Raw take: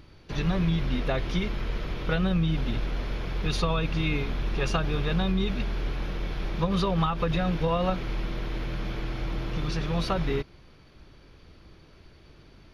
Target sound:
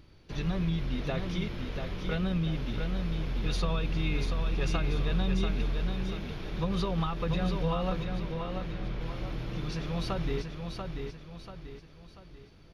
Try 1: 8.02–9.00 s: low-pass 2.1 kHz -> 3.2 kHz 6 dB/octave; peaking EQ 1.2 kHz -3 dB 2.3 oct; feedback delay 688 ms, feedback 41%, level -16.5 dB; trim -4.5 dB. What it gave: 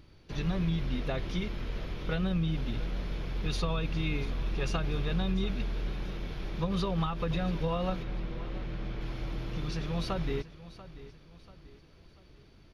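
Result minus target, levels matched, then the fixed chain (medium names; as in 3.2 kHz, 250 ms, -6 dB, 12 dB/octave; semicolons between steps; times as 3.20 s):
echo-to-direct -11 dB
8.02–9.00 s: low-pass 2.1 kHz -> 3.2 kHz 6 dB/octave; peaking EQ 1.2 kHz -3 dB 2.3 oct; feedback delay 688 ms, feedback 41%, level -5.5 dB; trim -4.5 dB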